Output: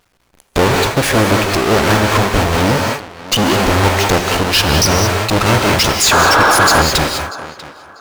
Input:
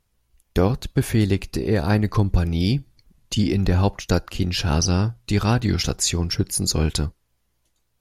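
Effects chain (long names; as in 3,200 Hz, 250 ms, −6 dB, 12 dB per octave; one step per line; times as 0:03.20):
each half-wave held at its own peak
reverb whose tail is shaped and stops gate 230 ms rising, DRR 8 dB
sound drawn into the spectrogram noise, 0:06.11–0:06.82, 260–1,700 Hz −19 dBFS
on a send: tape delay 641 ms, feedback 27%, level −22 dB, low-pass 3,900 Hz
on the sum: mid-hump overdrive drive 22 dB, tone 5,400 Hz, clips at −2 dBFS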